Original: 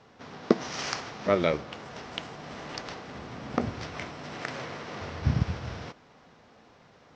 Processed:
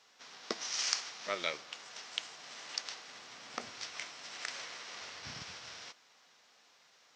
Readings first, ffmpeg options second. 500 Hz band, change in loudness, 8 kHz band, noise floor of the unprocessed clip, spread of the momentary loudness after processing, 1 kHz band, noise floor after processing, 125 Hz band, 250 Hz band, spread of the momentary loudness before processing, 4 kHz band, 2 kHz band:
-16.0 dB, -7.5 dB, +5.0 dB, -57 dBFS, 15 LU, -10.0 dB, -66 dBFS, -28.5 dB, -22.0 dB, 14 LU, +1.5 dB, -4.5 dB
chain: -af "aderivative,volume=6.5dB" -ar 32000 -c:a libvorbis -b:a 128k

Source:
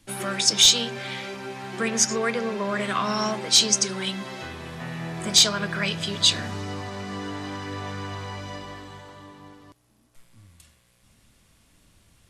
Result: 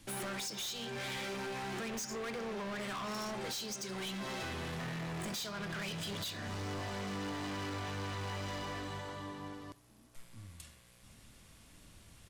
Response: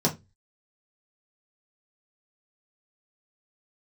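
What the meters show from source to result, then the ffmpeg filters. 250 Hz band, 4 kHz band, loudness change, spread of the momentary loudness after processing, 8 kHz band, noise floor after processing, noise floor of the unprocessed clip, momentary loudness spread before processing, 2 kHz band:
-10.5 dB, -20.0 dB, -17.0 dB, 19 LU, -20.5 dB, -61 dBFS, -62 dBFS, 18 LU, -11.0 dB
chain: -filter_complex "[0:a]acompressor=threshold=-31dB:ratio=16,asoftclip=type=hard:threshold=-39dB,asplit=2[a][b];[b]aecho=0:1:71:0.0891[c];[a][c]amix=inputs=2:normalize=0,volume=1dB"

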